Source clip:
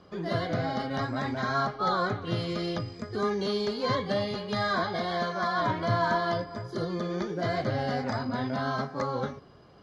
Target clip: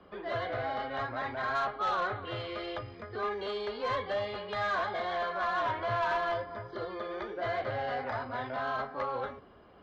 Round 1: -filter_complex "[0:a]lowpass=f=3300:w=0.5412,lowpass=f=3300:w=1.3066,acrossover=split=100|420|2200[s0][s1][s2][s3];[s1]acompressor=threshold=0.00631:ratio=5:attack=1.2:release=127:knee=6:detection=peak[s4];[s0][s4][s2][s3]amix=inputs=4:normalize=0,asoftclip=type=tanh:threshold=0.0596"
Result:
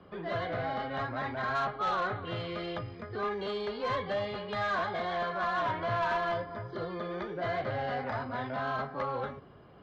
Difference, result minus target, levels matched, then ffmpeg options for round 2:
125 Hz band +4.0 dB
-filter_complex "[0:a]lowpass=f=3300:w=0.5412,lowpass=f=3300:w=1.3066,acrossover=split=100|420|2200[s0][s1][s2][s3];[s1]acompressor=threshold=0.00631:ratio=5:attack=1.2:release=127:knee=6:detection=peak,highpass=f=170:w=0.5412,highpass=f=170:w=1.3066[s4];[s0][s4][s2][s3]amix=inputs=4:normalize=0,asoftclip=type=tanh:threshold=0.0596"

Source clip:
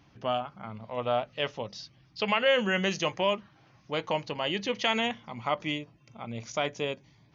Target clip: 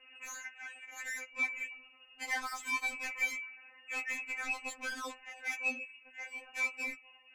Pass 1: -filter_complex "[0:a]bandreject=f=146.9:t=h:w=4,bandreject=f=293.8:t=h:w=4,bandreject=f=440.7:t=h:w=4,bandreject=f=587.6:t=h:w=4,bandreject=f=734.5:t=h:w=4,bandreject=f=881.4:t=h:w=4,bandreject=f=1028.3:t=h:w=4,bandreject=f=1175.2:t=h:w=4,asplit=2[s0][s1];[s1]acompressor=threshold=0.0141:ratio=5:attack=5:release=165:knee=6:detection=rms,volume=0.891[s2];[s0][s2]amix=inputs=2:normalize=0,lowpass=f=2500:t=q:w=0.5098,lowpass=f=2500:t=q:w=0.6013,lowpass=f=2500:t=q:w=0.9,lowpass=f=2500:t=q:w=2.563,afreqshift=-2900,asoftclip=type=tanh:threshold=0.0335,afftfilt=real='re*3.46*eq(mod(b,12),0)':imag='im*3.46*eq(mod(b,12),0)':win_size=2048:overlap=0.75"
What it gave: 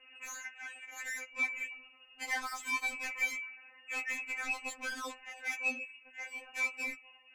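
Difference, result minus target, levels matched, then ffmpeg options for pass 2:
compression: peak gain reduction -5.5 dB
-filter_complex "[0:a]bandreject=f=146.9:t=h:w=4,bandreject=f=293.8:t=h:w=4,bandreject=f=440.7:t=h:w=4,bandreject=f=587.6:t=h:w=4,bandreject=f=734.5:t=h:w=4,bandreject=f=881.4:t=h:w=4,bandreject=f=1028.3:t=h:w=4,bandreject=f=1175.2:t=h:w=4,asplit=2[s0][s1];[s1]acompressor=threshold=0.00631:ratio=5:attack=5:release=165:knee=6:detection=rms,volume=0.891[s2];[s0][s2]amix=inputs=2:normalize=0,lowpass=f=2500:t=q:w=0.5098,lowpass=f=2500:t=q:w=0.6013,lowpass=f=2500:t=q:w=0.9,lowpass=f=2500:t=q:w=2.563,afreqshift=-2900,asoftclip=type=tanh:threshold=0.0335,afftfilt=real='re*3.46*eq(mod(b,12),0)':imag='im*3.46*eq(mod(b,12),0)':win_size=2048:overlap=0.75"

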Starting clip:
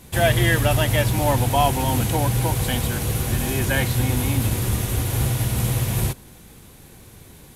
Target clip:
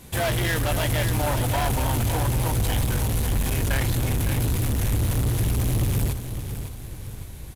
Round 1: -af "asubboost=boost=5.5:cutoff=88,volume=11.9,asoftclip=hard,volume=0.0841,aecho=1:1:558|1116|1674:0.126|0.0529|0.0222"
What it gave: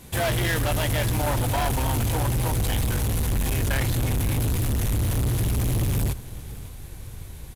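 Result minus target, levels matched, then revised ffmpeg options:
echo-to-direct -8.5 dB
-af "asubboost=boost=5.5:cutoff=88,volume=11.9,asoftclip=hard,volume=0.0841,aecho=1:1:558|1116|1674|2232|2790:0.335|0.141|0.0591|0.0248|0.0104"

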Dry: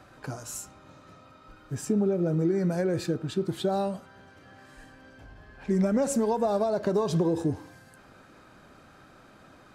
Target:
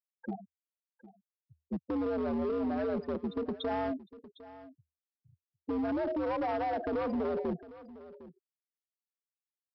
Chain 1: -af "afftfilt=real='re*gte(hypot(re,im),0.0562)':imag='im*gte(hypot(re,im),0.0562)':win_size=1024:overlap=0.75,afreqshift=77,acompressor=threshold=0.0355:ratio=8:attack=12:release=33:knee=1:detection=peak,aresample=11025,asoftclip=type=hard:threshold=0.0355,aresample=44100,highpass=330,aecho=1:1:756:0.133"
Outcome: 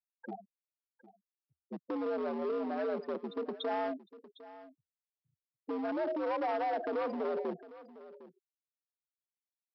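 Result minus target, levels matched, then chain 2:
250 Hz band -4.0 dB
-af "afftfilt=real='re*gte(hypot(re,im),0.0562)':imag='im*gte(hypot(re,im),0.0562)':win_size=1024:overlap=0.75,afreqshift=77,acompressor=threshold=0.0355:ratio=8:attack=12:release=33:knee=1:detection=peak,aresample=11025,asoftclip=type=hard:threshold=0.0355,aresample=44100,aecho=1:1:756:0.133"

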